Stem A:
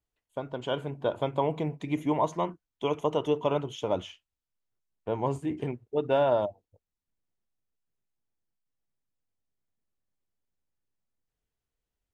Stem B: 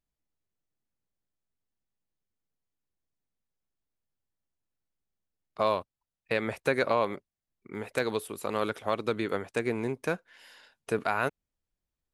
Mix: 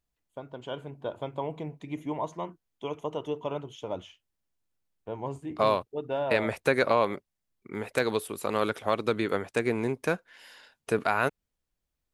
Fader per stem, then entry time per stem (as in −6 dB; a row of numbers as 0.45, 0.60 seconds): −6.0, +2.5 decibels; 0.00, 0.00 seconds